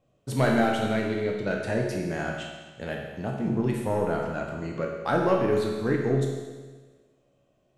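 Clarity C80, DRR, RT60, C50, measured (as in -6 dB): 4.0 dB, -0.5 dB, 1.4 s, 2.0 dB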